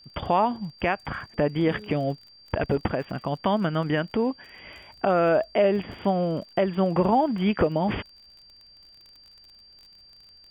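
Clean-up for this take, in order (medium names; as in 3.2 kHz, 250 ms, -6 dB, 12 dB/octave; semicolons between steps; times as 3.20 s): de-click; band-stop 4.7 kHz, Q 30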